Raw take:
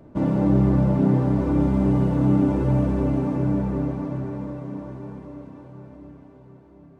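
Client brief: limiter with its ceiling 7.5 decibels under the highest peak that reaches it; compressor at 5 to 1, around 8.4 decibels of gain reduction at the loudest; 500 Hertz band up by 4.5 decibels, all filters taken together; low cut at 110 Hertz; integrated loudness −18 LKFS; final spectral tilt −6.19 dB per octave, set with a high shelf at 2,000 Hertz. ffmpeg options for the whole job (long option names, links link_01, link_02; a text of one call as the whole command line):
ffmpeg -i in.wav -af "highpass=110,equalizer=frequency=500:width_type=o:gain=5.5,highshelf=frequency=2000:gain=5,acompressor=threshold=-23dB:ratio=5,volume=13.5dB,alimiter=limit=-9dB:level=0:latency=1" out.wav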